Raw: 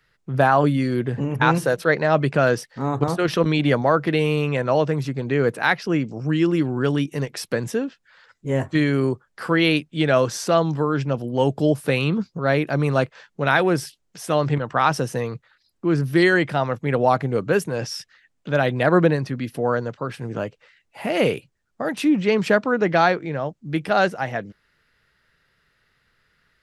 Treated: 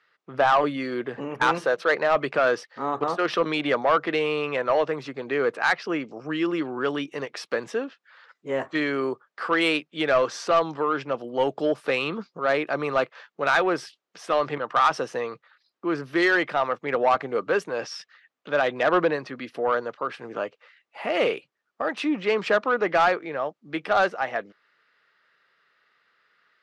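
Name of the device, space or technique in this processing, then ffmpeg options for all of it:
intercom: -af "highpass=410,lowpass=4300,equalizer=frequency=1200:width_type=o:width=0.21:gain=6.5,asoftclip=type=tanh:threshold=-12dB"

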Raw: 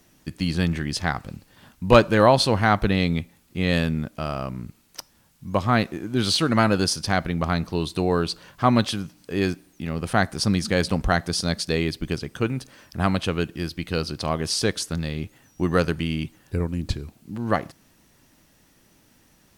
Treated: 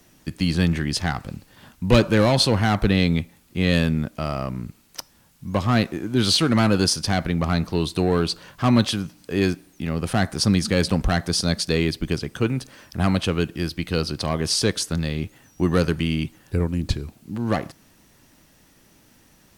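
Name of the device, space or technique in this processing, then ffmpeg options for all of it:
one-band saturation: -filter_complex "[0:a]acrossover=split=370|2500[link_01][link_02][link_03];[link_02]asoftclip=type=tanh:threshold=-23dB[link_04];[link_01][link_04][link_03]amix=inputs=3:normalize=0,volume=3dB"

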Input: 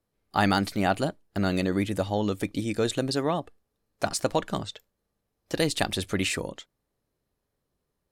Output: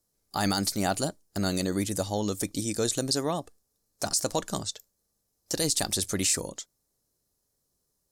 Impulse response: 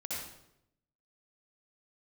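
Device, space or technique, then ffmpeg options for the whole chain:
over-bright horn tweeter: -af "highshelf=frequency=4100:width_type=q:width=1.5:gain=13,alimiter=limit=-12dB:level=0:latency=1:release=13,volume=-2.5dB"

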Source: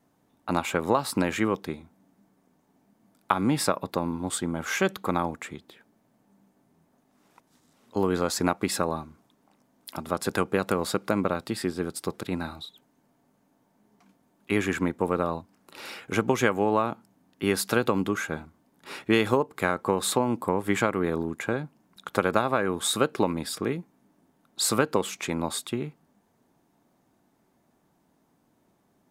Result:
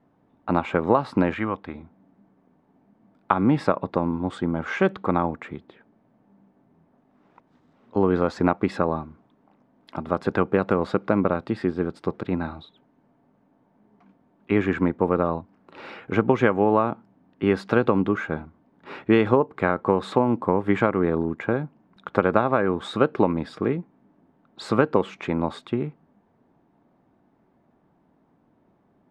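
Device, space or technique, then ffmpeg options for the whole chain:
phone in a pocket: -filter_complex "[0:a]asettb=1/sr,asplit=3[link_01][link_02][link_03];[link_01]atrim=end=1.344[link_04];[link_02]atrim=start=1.34:end=1.75,asetpts=PTS-STARTPTS,afade=type=in:duration=0.004:curve=qsin,afade=type=out:start_time=0.406:duration=0.004:curve=qsin,equalizer=frequency=160:width_type=o:width=0.67:gain=-12,equalizer=frequency=400:width_type=o:width=0.67:gain=-11,equalizer=frequency=6300:width_type=o:width=0.67:gain=-8[link_05];[link_03]atrim=start=1.746[link_06];[link_04][link_05]acrossfade=duration=0.004:curve1=hsin:curve2=qsin[link_07];[link_07][link_06]acrossfade=duration=0.004:curve1=qsin:curve2=hsin,lowpass=3100,highshelf=frequency=2200:gain=-10,volume=5dB"

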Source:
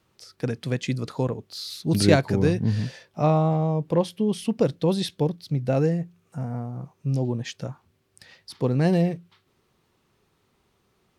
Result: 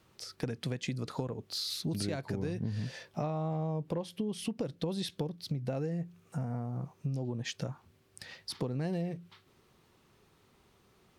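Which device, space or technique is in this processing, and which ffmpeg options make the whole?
serial compression, leveller first: -af "acompressor=threshold=-25dB:ratio=2.5,acompressor=threshold=-35dB:ratio=4,volume=2dB"

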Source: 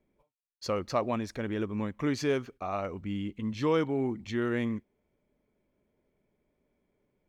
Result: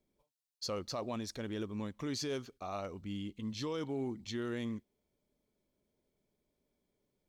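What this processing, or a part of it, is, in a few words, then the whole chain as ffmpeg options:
over-bright horn tweeter: -af "highshelf=frequency=3000:width_type=q:width=1.5:gain=8,alimiter=limit=-23dB:level=0:latency=1:release=12,volume=-6.5dB"

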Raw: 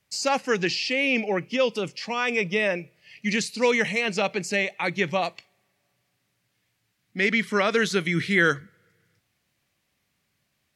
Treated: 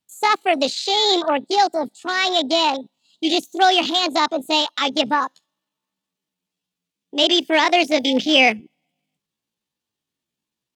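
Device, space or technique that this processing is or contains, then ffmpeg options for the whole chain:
chipmunk voice: -af "asetrate=68011,aresample=44100,atempo=0.64842,afwtdn=0.0251,volume=6.5dB"

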